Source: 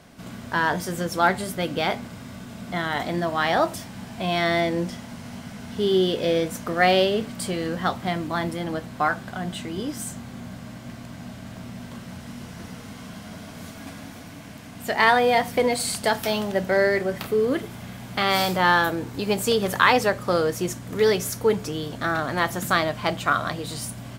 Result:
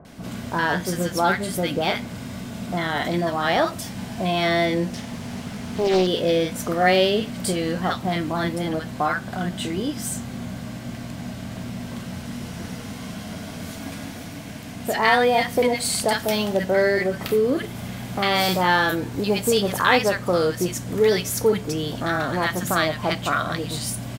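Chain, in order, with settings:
in parallel at −1 dB: downward compressor, threshold −30 dBFS, peak gain reduction 17 dB
on the sum: multiband delay without the direct sound lows, highs 50 ms, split 1,200 Hz
0:04.93–0:06.07: highs frequency-modulated by the lows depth 0.57 ms

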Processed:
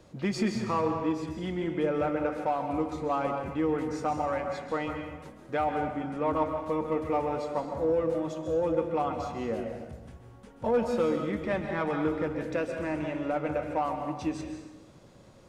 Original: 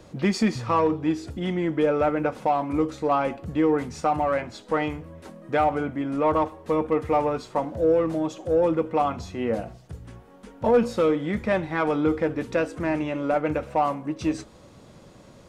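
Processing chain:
dense smooth reverb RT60 1.1 s, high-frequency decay 0.8×, pre-delay 120 ms, DRR 4 dB
level −7 dB

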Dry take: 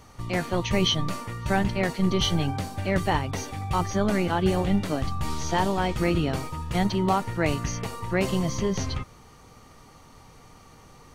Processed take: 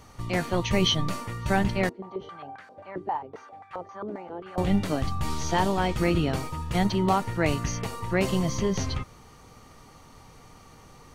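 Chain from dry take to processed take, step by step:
0:01.89–0:04.58: band-pass on a step sequencer 7.5 Hz 350–1,600 Hz

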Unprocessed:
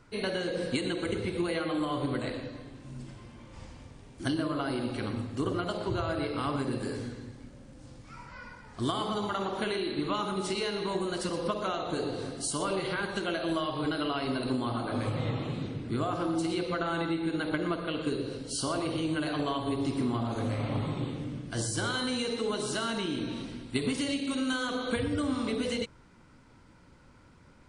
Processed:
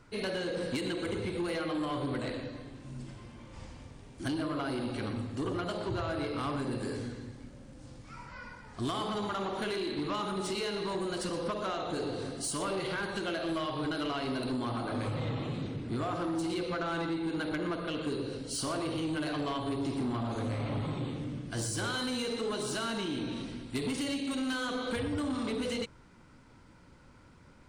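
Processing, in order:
soft clipping −27.5 dBFS, distortion −14 dB

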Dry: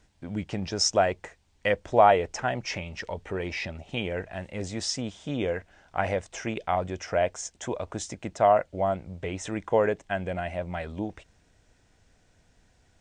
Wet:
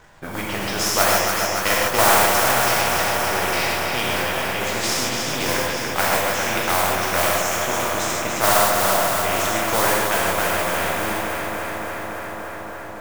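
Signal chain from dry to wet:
gain on one half-wave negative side −7 dB
parametric band 1,100 Hz +14 dB 2.1 octaves
in parallel at +2 dB: output level in coarse steps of 11 dB
on the sum: noise that follows the level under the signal 20 dB
on a send: delay that swaps between a low-pass and a high-pass 142 ms, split 970 Hz, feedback 85%, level −6 dB
on the sum: reverb whose tail is shaped and stops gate 180 ms flat, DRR −3.5 dB
every bin compressed towards the loudest bin 2 to 1
level −14 dB

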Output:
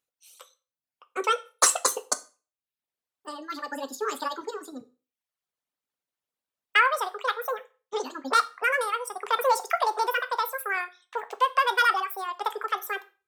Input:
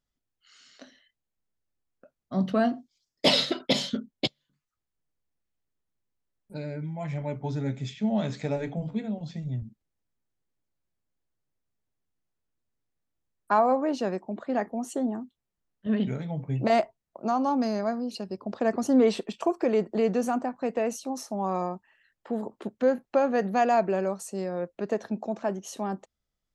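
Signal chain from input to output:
reverb reduction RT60 1.2 s
high-pass filter 500 Hz 6 dB per octave
dense smooth reverb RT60 0.68 s, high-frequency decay 0.95×, DRR 10 dB
wrong playback speed 7.5 ips tape played at 15 ips
level +4.5 dB

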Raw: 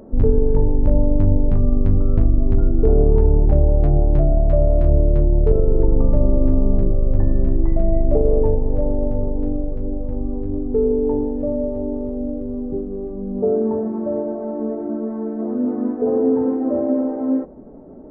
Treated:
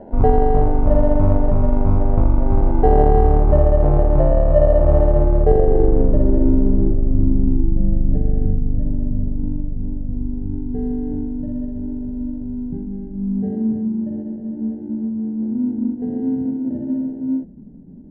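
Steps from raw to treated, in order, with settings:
decimation without filtering 37×
low-pass filter sweep 670 Hz → 190 Hz, 0:05.02–0:08.18

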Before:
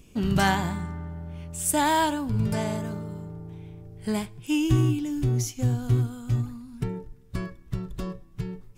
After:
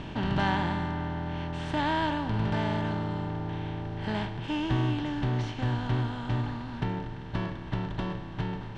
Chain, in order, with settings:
compressor on every frequency bin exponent 0.4
low-pass filter 4,000 Hz 24 dB per octave
level −8.5 dB

